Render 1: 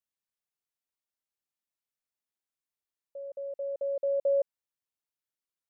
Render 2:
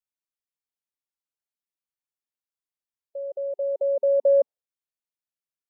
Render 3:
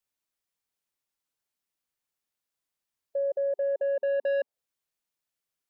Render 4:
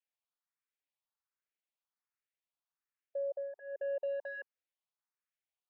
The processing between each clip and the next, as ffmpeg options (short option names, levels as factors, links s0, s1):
-af "afftdn=nr=14:nf=-49,acontrast=26,volume=1.41"
-af "asoftclip=type=tanh:threshold=0.0944,alimiter=level_in=2.11:limit=0.0631:level=0:latency=1:release=206,volume=0.473,volume=2.11"
-filter_complex "[0:a]highpass=710,lowpass=2700,asplit=2[s0][s1];[s1]afreqshift=1.3[s2];[s0][s2]amix=inputs=2:normalize=1,volume=0.794"